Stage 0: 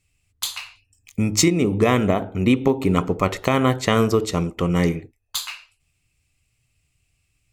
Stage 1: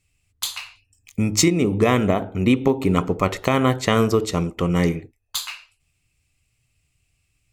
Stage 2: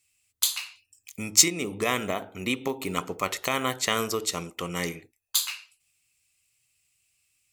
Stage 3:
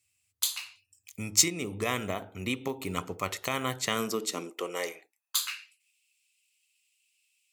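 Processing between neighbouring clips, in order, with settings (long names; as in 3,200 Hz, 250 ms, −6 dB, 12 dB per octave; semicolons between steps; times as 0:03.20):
no processing that can be heard
spectral tilt +3.5 dB per octave; level −6.5 dB
high-pass filter sweep 88 Hz → 2,800 Hz, 0:03.63–0:05.96; level −4.5 dB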